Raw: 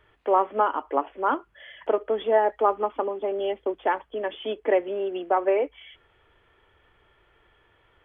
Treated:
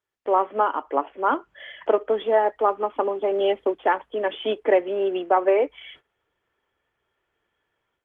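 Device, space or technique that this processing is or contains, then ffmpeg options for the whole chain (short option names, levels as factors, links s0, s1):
video call: -af "highpass=f=130:p=1,dynaudnorm=f=150:g=3:m=4.47,agate=range=0.112:threshold=0.00891:ratio=16:detection=peak,volume=0.501" -ar 48000 -c:a libopus -b:a 20k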